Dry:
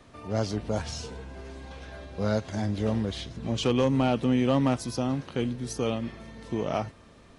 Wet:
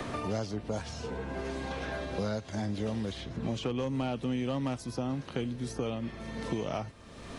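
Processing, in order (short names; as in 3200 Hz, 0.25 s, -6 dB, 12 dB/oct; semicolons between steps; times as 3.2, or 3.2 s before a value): three-band squash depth 100%; gain -6.5 dB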